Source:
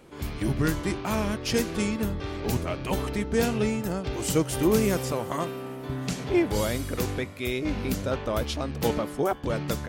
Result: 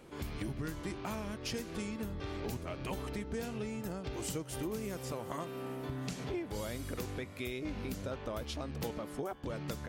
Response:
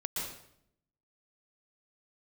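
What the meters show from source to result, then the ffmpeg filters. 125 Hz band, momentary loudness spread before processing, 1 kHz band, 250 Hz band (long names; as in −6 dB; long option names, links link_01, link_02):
−11.0 dB, 7 LU, −11.5 dB, −12.5 dB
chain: -af "acompressor=threshold=-33dB:ratio=6,volume=-3dB"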